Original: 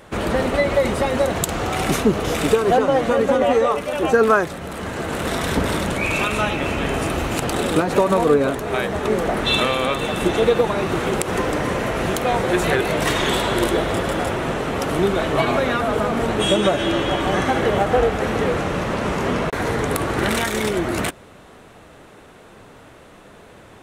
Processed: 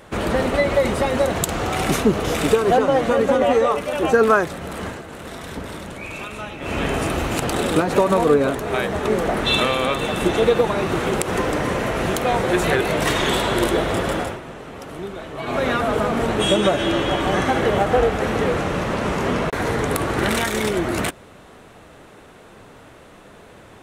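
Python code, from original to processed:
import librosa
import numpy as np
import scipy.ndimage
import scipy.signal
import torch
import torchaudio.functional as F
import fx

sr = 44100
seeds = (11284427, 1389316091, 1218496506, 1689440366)

y = fx.edit(x, sr, fx.fade_down_up(start_s=4.85, length_s=1.92, db=-11.0, fade_s=0.17),
    fx.fade_down_up(start_s=14.14, length_s=1.53, db=-12.5, fade_s=0.27), tone=tone)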